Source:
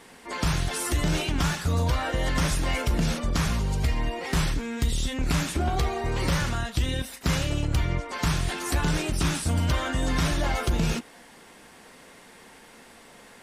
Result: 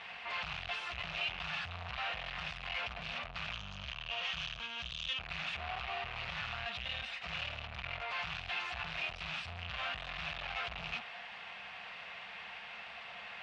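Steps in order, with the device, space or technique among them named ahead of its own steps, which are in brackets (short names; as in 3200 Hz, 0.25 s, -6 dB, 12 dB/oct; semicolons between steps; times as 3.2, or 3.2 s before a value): scooped metal amplifier (tube stage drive 42 dB, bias 0.5; speaker cabinet 87–3500 Hz, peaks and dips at 200 Hz +5 dB, 710 Hz +10 dB, 1200 Hz +4 dB, 2600 Hz +8 dB; passive tone stack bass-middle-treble 10-0-10); 3.52–5.2 thirty-one-band EQ 250 Hz -7 dB, 400 Hz -8 dB, 800 Hz -8 dB, 2000 Hz -7 dB, 3150 Hz +8 dB, 6300 Hz +10 dB, 10000 Hz -3 dB; gain +10 dB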